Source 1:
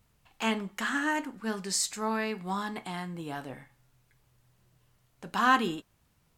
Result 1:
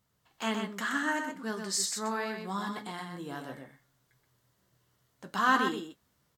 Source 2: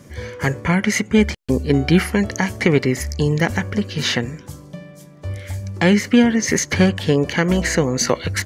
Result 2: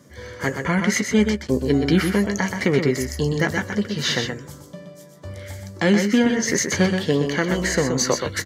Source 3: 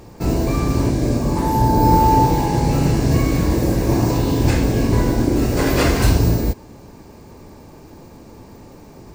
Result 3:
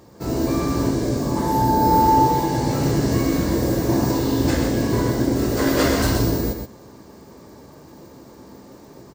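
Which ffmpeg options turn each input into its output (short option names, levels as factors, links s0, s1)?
-filter_complex "[0:a]asplit=2[s0][s1];[s1]adelay=15,volume=0.251[s2];[s0][s2]amix=inputs=2:normalize=0,flanger=delay=1:depth=3.4:regen=-81:speed=0.76:shape=triangular,highpass=f=180:p=1,asplit=2[s3][s4];[s4]aecho=0:1:125:0.501[s5];[s3][s5]amix=inputs=2:normalize=0,dynaudnorm=f=120:g=5:m=1.5,equalizer=f=800:t=o:w=0.33:g=-4,equalizer=f=2500:t=o:w=0.33:g=-8,equalizer=f=10000:t=o:w=0.33:g=-4"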